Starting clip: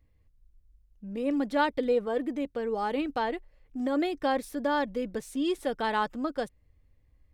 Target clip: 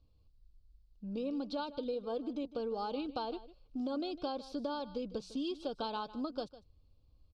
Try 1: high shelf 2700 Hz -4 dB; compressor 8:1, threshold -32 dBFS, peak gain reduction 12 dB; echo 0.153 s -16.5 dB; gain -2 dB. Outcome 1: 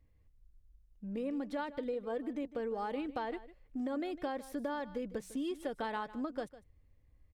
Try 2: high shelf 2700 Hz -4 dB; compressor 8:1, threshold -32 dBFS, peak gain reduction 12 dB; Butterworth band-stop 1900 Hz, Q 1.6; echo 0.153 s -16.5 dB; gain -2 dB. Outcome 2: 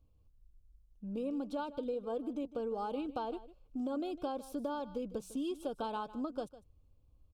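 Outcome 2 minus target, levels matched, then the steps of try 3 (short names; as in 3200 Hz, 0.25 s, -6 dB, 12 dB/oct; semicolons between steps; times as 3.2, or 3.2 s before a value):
4000 Hz band -7.0 dB
synth low-pass 4500 Hz, resonance Q 4.6; high shelf 2700 Hz -4 dB; compressor 8:1, threshold -32 dBFS, peak gain reduction 13 dB; Butterworth band-stop 1900 Hz, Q 1.6; echo 0.153 s -16.5 dB; gain -2 dB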